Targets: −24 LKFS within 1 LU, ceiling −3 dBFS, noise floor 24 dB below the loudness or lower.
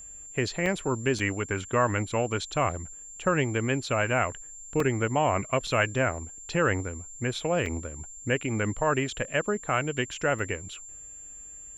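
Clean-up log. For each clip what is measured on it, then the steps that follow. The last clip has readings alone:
number of dropouts 6; longest dropout 3.0 ms; interfering tone 7,300 Hz; level of the tone −42 dBFS; integrated loudness −28.0 LKFS; sample peak −10.5 dBFS; target loudness −24.0 LKFS
→ repair the gap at 0:00.66/0:01.19/0:04.80/0:05.67/0:07.66/0:10.39, 3 ms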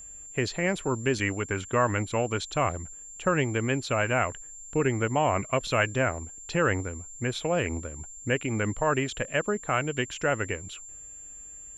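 number of dropouts 0; interfering tone 7,300 Hz; level of the tone −42 dBFS
→ notch filter 7,300 Hz, Q 30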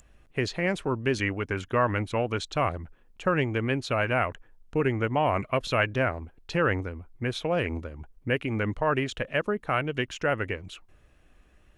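interfering tone none found; integrated loudness −28.0 LKFS; sample peak −10.5 dBFS; target loudness −24.0 LKFS
→ level +4 dB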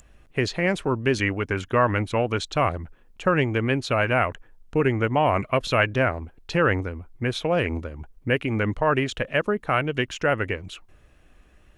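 integrated loudness −24.0 LKFS; sample peak −6.5 dBFS; background noise floor −56 dBFS

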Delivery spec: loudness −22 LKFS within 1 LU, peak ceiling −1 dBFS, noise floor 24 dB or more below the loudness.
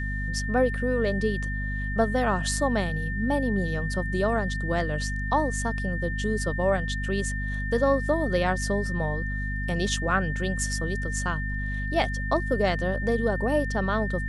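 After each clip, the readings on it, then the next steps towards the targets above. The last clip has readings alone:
mains hum 50 Hz; hum harmonics up to 250 Hz; level of the hum −28 dBFS; interfering tone 1,800 Hz; level of the tone −33 dBFS; integrated loudness −26.5 LKFS; sample peak −10.5 dBFS; target loudness −22.0 LKFS
→ hum removal 50 Hz, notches 5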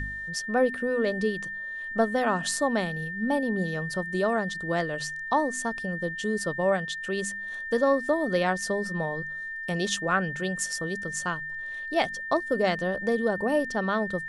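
mains hum none found; interfering tone 1,800 Hz; level of the tone −33 dBFS
→ notch filter 1,800 Hz, Q 30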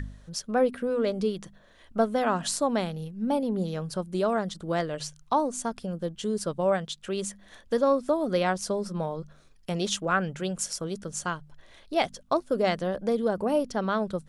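interfering tone none found; integrated loudness −28.5 LKFS; sample peak −11.5 dBFS; target loudness −22.0 LKFS
→ level +6.5 dB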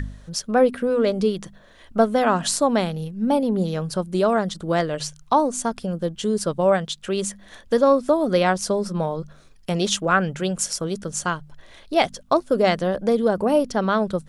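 integrated loudness −22.0 LKFS; sample peak −5.0 dBFS; background noise floor −49 dBFS

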